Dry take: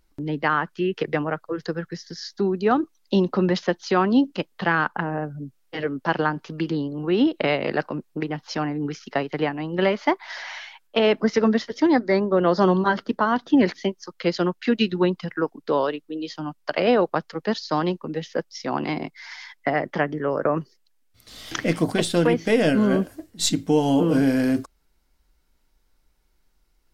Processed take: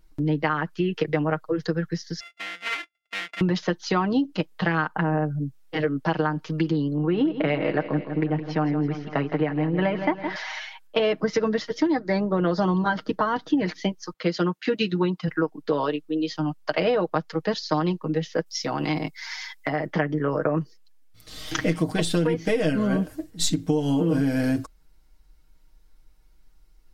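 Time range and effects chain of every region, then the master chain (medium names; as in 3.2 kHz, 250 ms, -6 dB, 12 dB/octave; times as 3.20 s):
2.20–3.41 s: sorted samples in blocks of 64 samples + band-pass filter 2.4 kHz, Q 3.3 + loudspeaker Doppler distortion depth 0.23 ms
6.96–10.36 s: low-pass 2.5 kHz + feedback delay 164 ms, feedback 54%, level -11.5 dB
14.13–15.28 s: high-pass 140 Hz + tape noise reduction on one side only decoder only
18.46–19.86 s: treble shelf 5 kHz +10 dB + compression 2.5:1, threshold -25 dBFS
whole clip: bass shelf 120 Hz +8.5 dB; comb 6.4 ms, depth 65%; compression 6:1, threshold -19 dBFS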